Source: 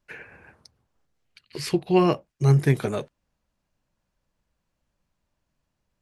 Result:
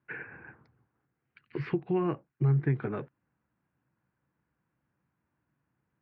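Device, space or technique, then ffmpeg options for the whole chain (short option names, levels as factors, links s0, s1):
bass amplifier: -af "acompressor=threshold=0.0316:ratio=3,highpass=f=79:w=0.5412,highpass=f=79:w=1.3066,equalizer=f=90:t=q:w=4:g=-4,equalizer=f=130:t=q:w=4:g=6,equalizer=f=310:t=q:w=4:g=5,equalizer=f=600:t=q:w=4:g=-8,equalizer=f=1500:t=q:w=4:g=4,lowpass=f=2200:w=0.5412,lowpass=f=2200:w=1.3066"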